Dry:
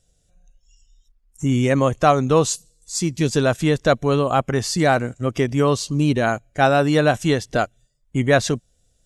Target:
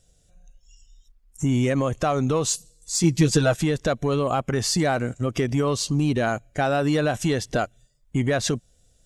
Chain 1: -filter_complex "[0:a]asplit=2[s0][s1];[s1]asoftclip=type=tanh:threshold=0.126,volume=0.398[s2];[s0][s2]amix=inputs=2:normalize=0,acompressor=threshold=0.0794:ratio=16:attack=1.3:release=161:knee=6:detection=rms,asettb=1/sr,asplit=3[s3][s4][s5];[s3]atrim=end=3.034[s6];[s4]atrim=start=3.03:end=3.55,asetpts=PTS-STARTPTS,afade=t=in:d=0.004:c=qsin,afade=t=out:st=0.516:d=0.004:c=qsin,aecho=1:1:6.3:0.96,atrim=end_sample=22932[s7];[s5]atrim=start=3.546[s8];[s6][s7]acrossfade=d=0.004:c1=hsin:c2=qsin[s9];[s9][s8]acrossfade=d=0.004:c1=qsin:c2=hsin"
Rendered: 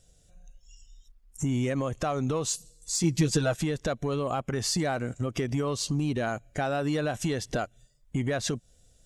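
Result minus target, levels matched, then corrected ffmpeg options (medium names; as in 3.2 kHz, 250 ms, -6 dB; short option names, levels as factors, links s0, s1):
compression: peak gain reduction +6.5 dB
-filter_complex "[0:a]asplit=2[s0][s1];[s1]asoftclip=type=tanh:threshold=0.126,volume=0.398[s2];[s0][s2]amix=inputs=2:normalize=0,acompressor=threshold=0.178:ratio=16:attack=1.3:release=161:knee=6:detection=rms,asettb=1/sr,asplit=3[s3][s4][s5];[s3]atrim=end=3.034[s6];[s4]atrim=start=3.03:end=3.55,asetpts=PTS-STARTPTS,afade=t=in:d=0.004:c=qsin,afade=t=out:st=0.516:d=0.004:c=qsin,aecho=1:1:6.3:0.96,atrim=end_sample=22932[s7];[s5]atrim=start=3.546[s8];[s6][s7]acrossfade=d=0.004:c1=hsin:c2=qsin[s9];[s9][s8]acrossfade=d=0.004:c1=qsin:c2=hsin"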